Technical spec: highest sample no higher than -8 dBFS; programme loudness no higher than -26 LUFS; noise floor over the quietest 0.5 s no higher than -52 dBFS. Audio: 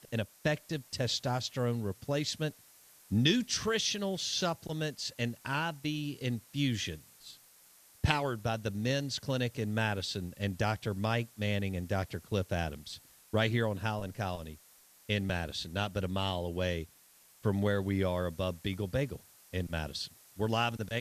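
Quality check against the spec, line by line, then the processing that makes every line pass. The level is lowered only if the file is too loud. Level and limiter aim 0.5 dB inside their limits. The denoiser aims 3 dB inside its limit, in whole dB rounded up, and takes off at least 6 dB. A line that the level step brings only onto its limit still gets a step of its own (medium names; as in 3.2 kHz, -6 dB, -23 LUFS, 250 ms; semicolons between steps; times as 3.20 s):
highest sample -9.0 dBFS: pass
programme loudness -33.5 LUFS: pass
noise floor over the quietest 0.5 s -62 dBFS: pass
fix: none needed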